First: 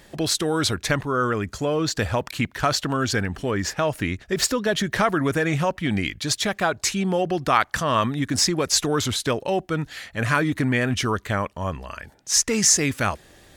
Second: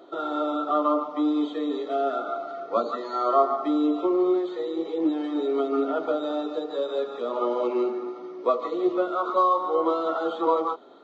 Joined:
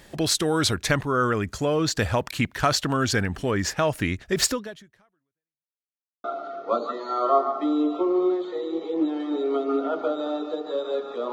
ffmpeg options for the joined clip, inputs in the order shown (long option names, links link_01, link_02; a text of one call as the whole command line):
ffmpeg -i cue0.wav -i cue1.wav -filter_complex "[0:a]apad=whole_dur=11.32,atrim=end=11.32,asplit=2[link_01][link_02];[link_01]atrim=end=5.76,asetpts=PTS-STARTPTS,afade=type=out:start_time=4.5:duration=1.26:curve=exp[link_03];[link_02]atrim=start=5.76:end=6.24,asetpts=PTS-STARTPTS,volume=0[link_04];[1:a]atrim=start=2.28:end=7.36,asetpts=PTS-STARTPTS,afade=type=in:duration=0.004:curve=hsin[link_05];[link_03][link_04][link_05]concat=n=3:v=0:a=1" out.wav